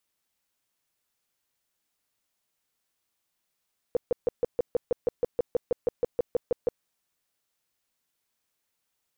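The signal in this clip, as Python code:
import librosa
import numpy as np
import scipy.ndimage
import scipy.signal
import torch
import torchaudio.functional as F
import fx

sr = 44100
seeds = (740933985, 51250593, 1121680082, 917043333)

y = fx.tone_burst(sr, hz=485.0, cycles=8, every_s=0.16, bursts=18, level_db=-19.5)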